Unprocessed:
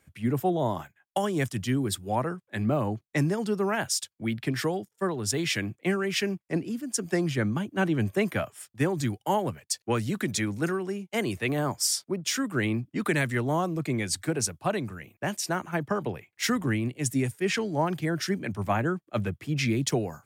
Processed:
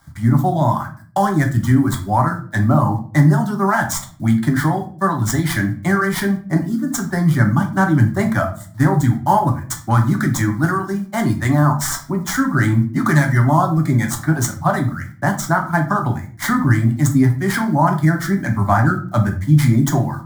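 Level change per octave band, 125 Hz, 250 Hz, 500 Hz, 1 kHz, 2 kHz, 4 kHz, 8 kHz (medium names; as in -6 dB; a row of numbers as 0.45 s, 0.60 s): +15.5 dB, +11.5 dB, +5.0 dB, +13.5 dB, +10.0 dB, 0.0 dB, +4.5 dB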